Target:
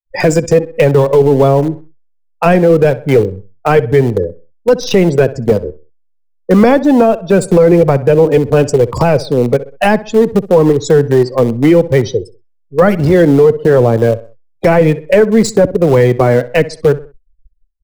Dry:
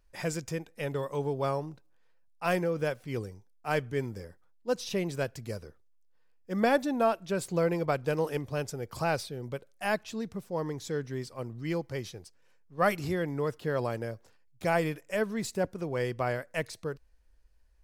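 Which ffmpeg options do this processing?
ffmpeg -i in.wav -filter_complex "[0:a]afftdn=noise_reduction=33:noise_floor=-42,agate=range=-33dB:threshold=-54dB:ratio=3:detection=peak,flanger=delay=1:depth=3.4:regen=51:speed=1:shape=sinusoidal,asplit=2[link_01][link_02];[link_02]aeval=exprs='val(0)*gte(abs(val(0)),0.0141)':channel_layout=same,volume=-7dB[link_03];[link_01][link_03]amix=inputs=2:normalize=0,asplit=2[link_04][link_05];[link_05]adelay=64,lowpass=frequency=3100:poles=1,volume=-19dB,asplit=2[link_06][link_07];[link_07]adelay=64,lowpass=frequency=3100:poles=1,volume=0.31,asplit=2[link_08][link_09];[link_09]adelay=64,lowpass=frequency=3100:poles=1,volume=0.31[link_10];[link_04][link_06][link_08][link_10]amix=inputs=4:normalize=0,acrossover=split=130|260[link_11][link_12][link_13];[link_11]acompressor=threshold=-49dB:ratio=4[link_14];[link_12]acompressor=threshold=-41dB:ratio=4[link_15];[link_13]acompressor=threshold=-42dB:ratio=4[link_16];[link_14][link_15][link_16]amix=inputs=3:normalize=0,equalizer=frequency=460:width_type=o:width=0.84:gain=8.5,apsyclip=30dB,adynamicequalizer=threshold=0.0708:dfrequency=1300:dqfactor=1.2:tfrequency=1300:tqfactor=1.2:attack=5:release=100:ratio=0.375:range=2:mode=cutabove:tftype=bell,volume=-1.5dB" out.wav

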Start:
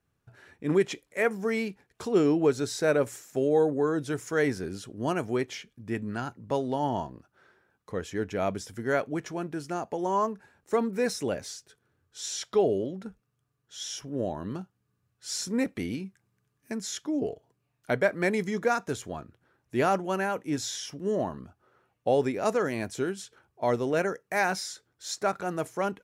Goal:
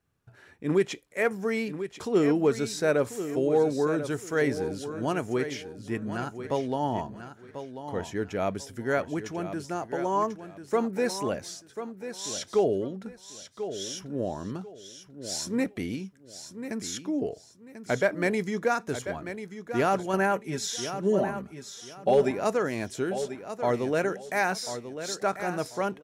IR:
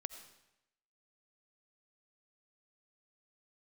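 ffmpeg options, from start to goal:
-filter_complex "[0:a]asettb=1/sr,asplit=3[link_01][link_02][link_03];[link_01]atrim=end=20.134[link_04];[link_02]atrim=start=20.13:end=22.31,asetpts=PTS-STARTPTS,afade=type=in:duration=0.004:curve=qsin,afade=type=out:start_time=2.176:duration=0.004:curve=qsin,aecho=1:1:5.1:0.75,atrim=end_sample=96138[link_05];[link_03]atrim=start=22.306[link_06];[link_04][link_05]acrossfade=duration=0.004:curve1=hsin:curve2=qsin[link_07];[link_07][link_06]acrossfade=duration=0.004:curve1=qsin:curve2=hsin,asoftclip=type=hard:threshold=-14.5dB,aecho=1:1:1041|2082|3123:0.299|0.0746|0.0187"

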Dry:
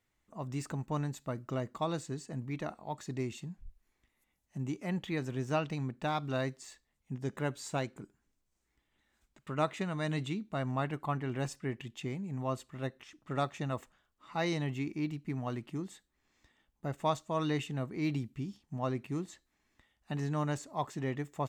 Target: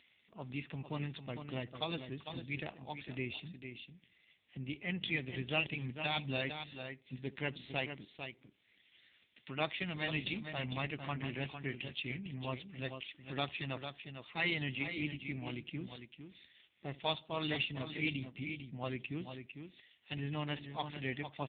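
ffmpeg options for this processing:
ffmpeg -i in.wav -filter_complex "[0:a]acompressor=mode=upward:threshold=-56dB:ratio=2.5,asplit=2[link_01][link_02];[link_02]adelay=71,lowpass=frequency=1000:poles=1,volume=-19dB,asplit=2[link_03][link_04];[link_04]adelay=71,lowpass=frequency=1000:poles=1,volume=0.44,asplit=2[link_05][link_06];[link_06]adelay=71,lowpass=frequency=1000:poles=1,volume=0.44[link_07];[link_03][link_05][link_07]amix=inputs=3:normalize=0[link_08];[link_01][link_08]amix=inputs=2:normalize=0,aexciter=amount=5.4:drive=8.2:freq=2000,highshelf=frequency=2500:gain=-2,asplit=2[link_09][link_10];[link_10]aecho=0:1:451:0.398[link_11];[link_09][link_11]amix=inputs=2:normalize=0,volume=-5dB" -ar 8000 -c:a libopencore_amrnb -b:a 5900 out.amr

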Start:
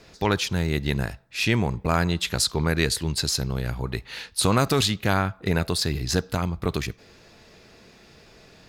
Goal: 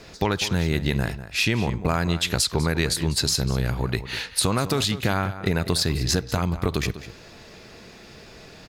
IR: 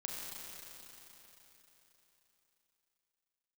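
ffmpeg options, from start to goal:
-filter_complex "[0:a]acompressor=threshold=-25dB:ratio=6,asplit=2[link_01][link_02];[link_02]adelay=198.3,volume=-13dB,highshelf=frequency=4000:gain=-4.46[link_03];[link_01][link_03]amix=inputs=2:normalize=0,volume=6dB"

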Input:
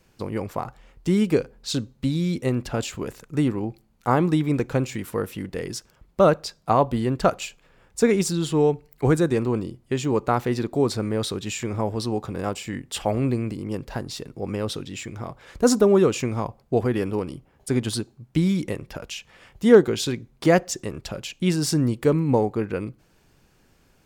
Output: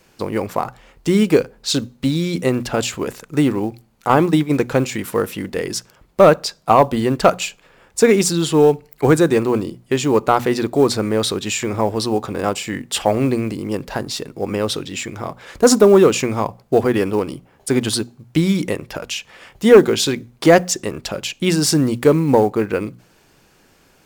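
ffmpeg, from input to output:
ffmpeg -i in.wav -filter_complex "[0:a]asplit=3[link_01][link_02][link_03];[link_01]afade=type=out:start_time=4.07:duration=0.02[link_04];[link_02]agate=range=-10dB:threshold=-21dB:ratio=16:detection=peak,afade=type=in:start_time=4.07:duration=0.02,afade=type=out:start_time=4.52:duration=0.02[link_05];[link_03]afade=type=in:start_time=4.52:duration=0.02[link_06];[link_04][link_05][link_06]amix=inputs=3:normalize=0,lowshelf=frequency=150:gain=-10,bandreject=frequency=60:width_type=h:width=6,bandreject=frequency=120:width_type=h:width=6,bandreject=frequency=180:width_type=h:width=6,bandreject=frequency=240:width_type=h:width=6,acrusher=bits=8:mode=log:mix=0:aa=0.000001,aeval=exprs='0.841*sin(PI/2*1.78*val(0)/0.841)':channel_layout=same" out.wav

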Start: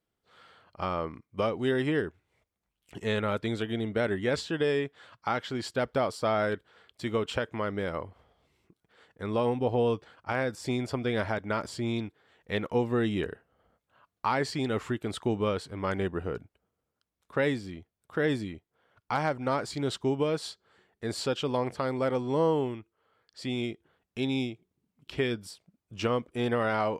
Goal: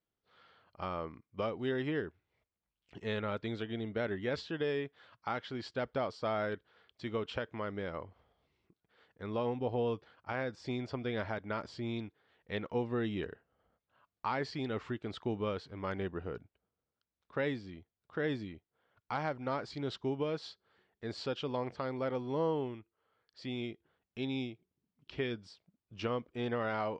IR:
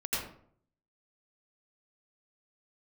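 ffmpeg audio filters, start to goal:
-af "lowpass=frequency=5400:width=0.5412,lowpass=frequency=5400:width=1.3066,volume=-7dB"

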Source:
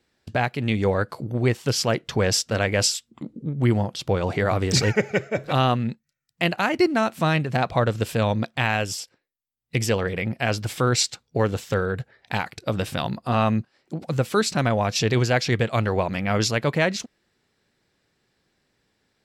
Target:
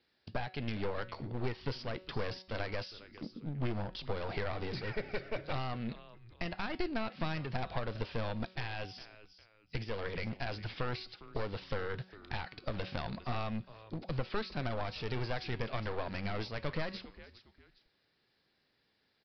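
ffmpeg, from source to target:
ffmpeg -i in.wav -filter_complex "[0:a]aemphasis=mode=production:type=bsi,acompressor=threshold=-24dB:ratio=6,asplit=3[link_01][link_02][link_03];[link_02]adelay=406,afreqshift=-110,volume=-21dB[link_04];[link_03]adelay=812,afreqshift=-220,volume=-30.9dB[link_05];[link_01][link_04][link_05]amix=inputs=3:normalize=0,acrossover=split=2800[link_06][link_07];[link_07]acompressor=threshold=-36dB:ratio=4:attack=1:release=60[link_08];[link_06][link_08]amix=inputs=2:normalize=0,aresample=11025,aeval=exprs='clip(val(0),-1,0.02)':channel_layout=same,aresample=44100,lowshelf=frequency=150:gain=8.5,bandreject=frequency=186.8:width_type=h:width=4,bandreject=frequency=373.6:width_type=h:width=4,bandreject=frequency=560.4:width_type=h:width=4,bandreject=frequency=747.2:width_type=h:width=4,bandreject=frequency=934:width_type=h:width=4,bandreject=frequency=1120.8:width_type=h:width=4,bandreject=frequency=1307.6:width_type=h:width=4,bandreject=frequency=1494.4:width_type=h:width=4,bandreject=frequency=1681.2:width_type=h:width=4,bandreject=frequency=1868:width_type=h:width=4,bandreject=frequency=2054.8:width_type=h:width=4,bandreject=frequency=2241.6:width_type=h:width=4,bandreject=frequency=2428.4:width_type=h:width=4,bandreject=frequency=2615.2:width_type=h:width=4,bandreject=frequency=2802:width_type=h:width=4,bandreject=frequency=2988.8:width_type=h:width=4,bandreject=frequency=3175.6:width_type=h:width=4,bandreject=frequency=3362.4:width_type=h:width=4,bandreject=frequency=3549.2:width_type=h:width=4,bandreject=frequency=3736:width_type=h:width=4,bandreject=frequency=3922.8:width_type=h:width=4,bandreject=frequency=4109.6:width_type=h:width=4,bandreject=frequency=4296.4:width_type=h:width=4,bandreject=frequency=4483.2:width_type=h:width=4,bandreject=frequency=4670:width_type=h:width=4,bandreject=frequency=4856.8:width_type=h:width=4,bandreject=frequency=5043.6:width_type=h:width=4,bandreject=frequency=5230.4:width_type=h:width=4,bandreject=frequency=5417.2:width_type=h:width=4,volume=-6dB" out.wav

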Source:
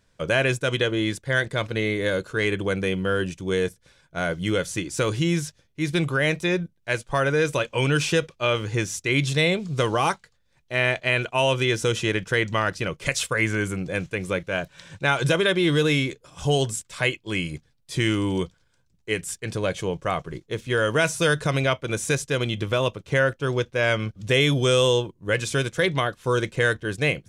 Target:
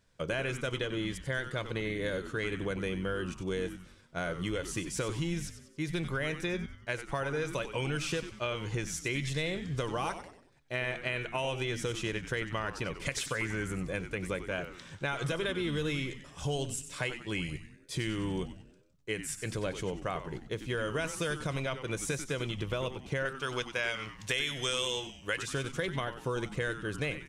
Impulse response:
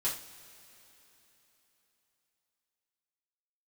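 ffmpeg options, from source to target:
-filter_complex "[0:a]asettb=1/sr,asplit=3[link_01][link_02][link_03];[link_01]atrim=end=23.254[link_04];[link_02]atrim=start=23.25:end=25.43,asetpts=PTS-STARTPTS,afade=type=in:duration=0.004:curve=qsin,afade=type=out:start_time=2.176:duration=0.004:curve=qsin,tiltshelf=frequency=690:gain=-8.5[link_05];[link_03]atrim=start=25.426[link_06];[link_04][link_05]acrossfade=duration=0.004:curve1=hsin:curve2=qsin[link_07];[link_07][link_06]acrossfade=duration=0.004:curve1=qsin:curve2=hsin,acompressor=threshold=-26dB:ratio=4,asplit=6[link_08][link_09][link_10][link_11][link_12][link_13];[link_09]adelay=94,afreqshift=-140,volume=-10.5dB[link_14];[link_10]adelay=188,afreqshift=-280,volume=-17.4dB[link_15];[link_11]adelay=282,afreqshift=-420,volume=-24.4dB[link_16];[link_12]adelay=376,afreqshift=-560,volume=-31.3dB[link_17];[link_13]adelay=470,afreqshift=-700,volume=-38.2dB[link_18];[link_08][link_14][link_15][link_16][link_17][link_18]amix=inputs=6:normalize=0,volume=-5dB"

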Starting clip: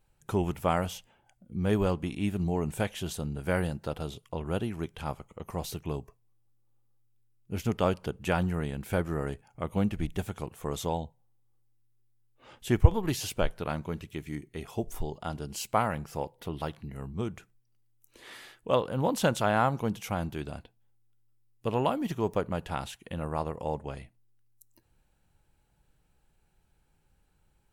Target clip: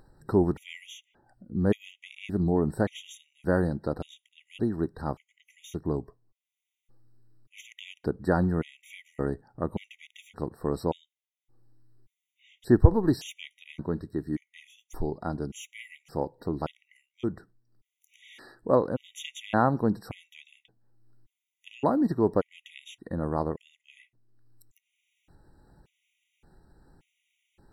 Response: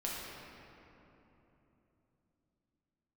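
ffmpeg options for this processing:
-af "lowpass=frequency=4000:poles=1,equalizer=frequency=300:width_type=o:width=1.2:gain=8,acompressor=mode=upward:threshold=-47dB:ratio=2.5,afftfilt=real='re*gt(sin(2*PI*0.87*pts/sr)*(1-2*mod(floor(b*sr/1024/1900),2)),0)':imag='im*gt(sin(2*PI*0.87*pts/sr)*(1-2*mod(floor(b*sr/1024/1900),2)),0)':win_size=1024:overlap=0.75,volume=1dB"

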